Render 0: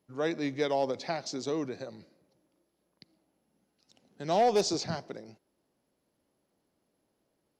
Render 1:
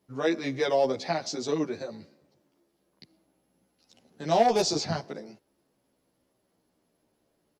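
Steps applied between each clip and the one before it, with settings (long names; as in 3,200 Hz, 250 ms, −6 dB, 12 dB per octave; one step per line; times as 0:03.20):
barber-pole flanger 12 ms −0.35 Hz
level +7 dB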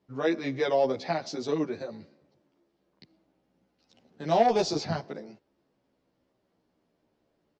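high-frequency loss of the air 110 metres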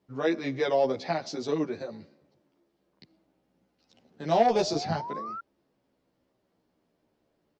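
sound drawn into the spectrogram rise, 0:04.54–0:05.41, 530–1,400 Hz −37 dBFS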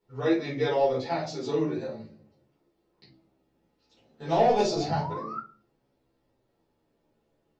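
rectangular room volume 180 cubic metres, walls furnished, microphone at 4.4 metres
level −8.5 dB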